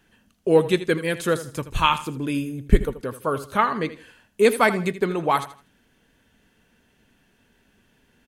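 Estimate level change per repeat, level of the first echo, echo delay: -10.5 dB, -14.0 dB, 80 ms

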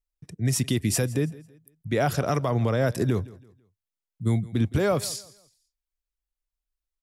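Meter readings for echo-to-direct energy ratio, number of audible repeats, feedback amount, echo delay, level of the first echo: -20.0 dB, 2, 33%, 165 ms, -20.5 dB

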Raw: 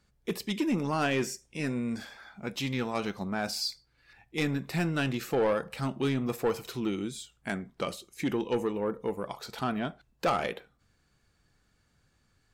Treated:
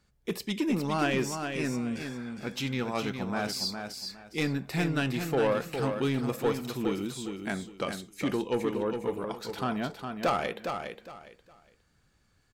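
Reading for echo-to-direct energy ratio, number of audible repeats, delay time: -6.0 dB, 3, 410 ms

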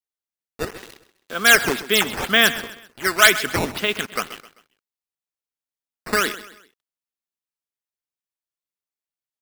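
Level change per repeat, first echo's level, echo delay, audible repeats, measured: -8.0 dB, -15.5 dB, 130 ms, 3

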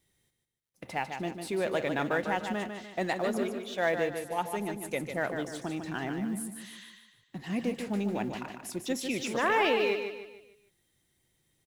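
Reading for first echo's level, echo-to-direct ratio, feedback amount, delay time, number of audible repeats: -7.0 dB, -6.0 dB, 41%, 149 ms, 4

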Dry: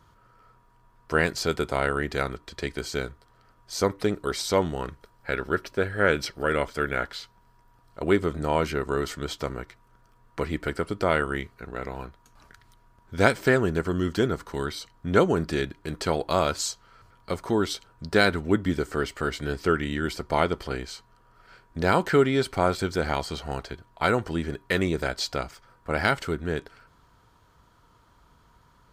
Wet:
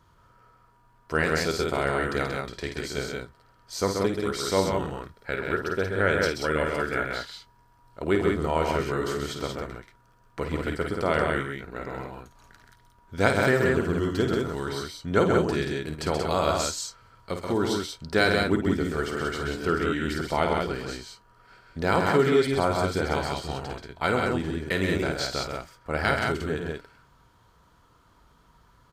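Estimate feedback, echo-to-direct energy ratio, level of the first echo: no regular repeats, -0.5 dB, -7.5 dB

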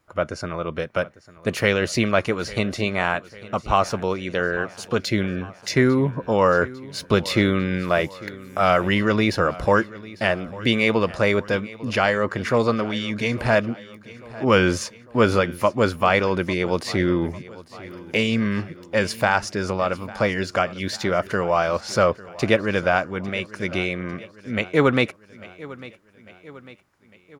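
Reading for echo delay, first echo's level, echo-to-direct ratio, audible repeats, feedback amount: 849 ms, -19.0 dB, -17.5 dB, 3, 54%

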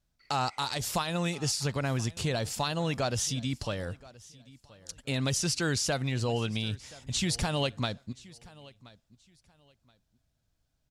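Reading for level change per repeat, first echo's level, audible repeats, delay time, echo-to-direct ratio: -12.5 dB, -21.5 dB, 2, 1026 ms, -21.5 dB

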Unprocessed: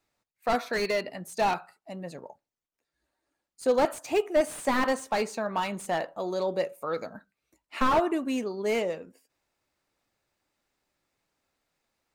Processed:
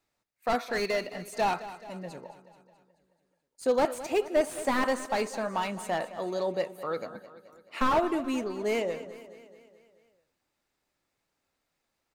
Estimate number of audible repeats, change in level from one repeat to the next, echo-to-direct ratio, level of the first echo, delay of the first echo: 5, -5.0 dB, -13.5 dB, -15.0 dB, 215 ms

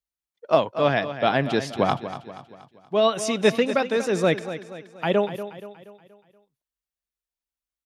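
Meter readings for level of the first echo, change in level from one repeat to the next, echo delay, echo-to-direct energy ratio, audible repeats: -12.0 dB, -7.0 dB, 238 ms, -11.0 dB, 4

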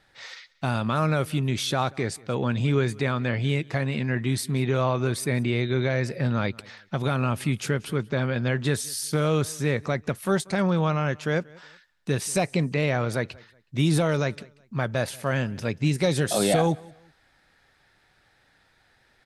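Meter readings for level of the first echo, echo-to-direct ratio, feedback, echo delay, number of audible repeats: -24.0 dB, -23.5 dB, 30%, 185 ms, 2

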